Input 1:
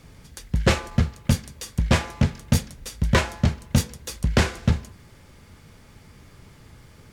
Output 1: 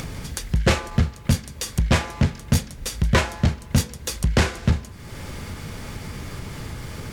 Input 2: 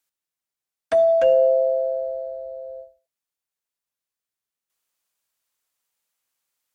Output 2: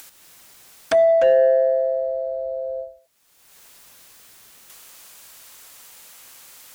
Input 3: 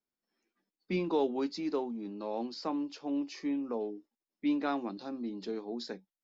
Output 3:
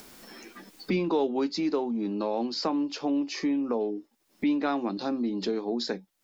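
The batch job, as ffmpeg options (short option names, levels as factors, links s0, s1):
-af "asoftclip=type=tanh:threshold=0.316,acompressor=mode=upward:threshold=0.0708:ratio=2.5,volume=1.33"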